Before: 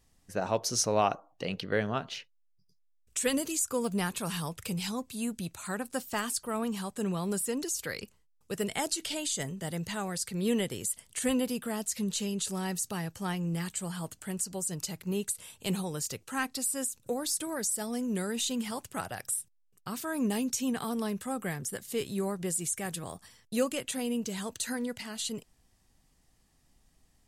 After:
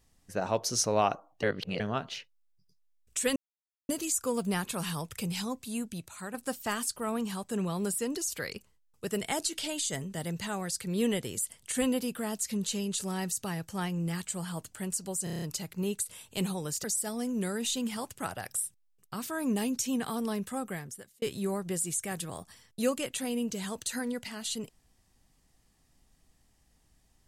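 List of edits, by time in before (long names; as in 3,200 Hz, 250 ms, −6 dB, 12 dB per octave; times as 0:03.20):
0:01.43–0:01.80: reverse
0:03.36: splice in silence 0.53 s
0:05.09–0:05.81: fade out, to −6.5 dB
0:14.71: stutter 0.03 s, 7 plays
0:16.13–0:17.58: remove
0:21.28–0:21.96: fade out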